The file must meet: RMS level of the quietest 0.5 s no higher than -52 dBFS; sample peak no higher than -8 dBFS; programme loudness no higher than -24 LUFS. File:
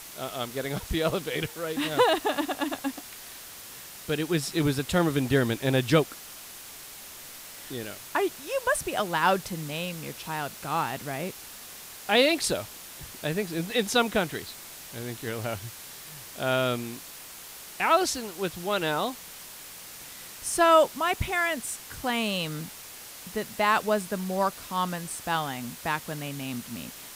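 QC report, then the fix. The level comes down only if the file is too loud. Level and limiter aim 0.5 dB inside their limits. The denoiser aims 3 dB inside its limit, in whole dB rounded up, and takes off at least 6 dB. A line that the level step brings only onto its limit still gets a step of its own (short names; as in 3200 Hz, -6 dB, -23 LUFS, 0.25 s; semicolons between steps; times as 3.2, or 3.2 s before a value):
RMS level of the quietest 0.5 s -44 dBFS: fail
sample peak -7.0 dBFS: fail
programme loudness -27.5 LUFS: OK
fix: denoiser 11 dB, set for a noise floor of -44 dBFS; limiter -8.5 dBFS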